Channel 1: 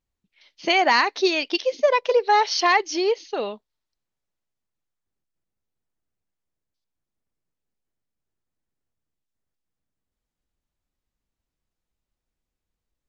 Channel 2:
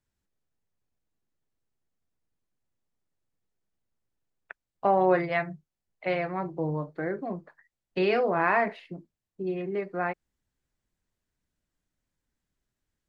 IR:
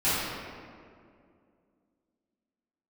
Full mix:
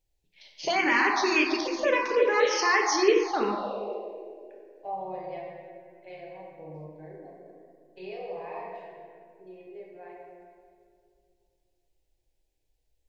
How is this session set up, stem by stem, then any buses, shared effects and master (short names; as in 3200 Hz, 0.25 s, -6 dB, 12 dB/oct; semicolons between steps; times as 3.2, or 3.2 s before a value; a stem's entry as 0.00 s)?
+3.0 dB, 0.00 s, send -13 dB, limiter -15.5 dBFS, peak gain reduction 9 dB
-18.0 dB, 0.00 s, send -8.5 dB, dry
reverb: on, RT60 2.3 s, pre-delay 3 ms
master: envelope phaser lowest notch 210 Hz, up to 1400 Hz, full sweep at -9.5 dBFS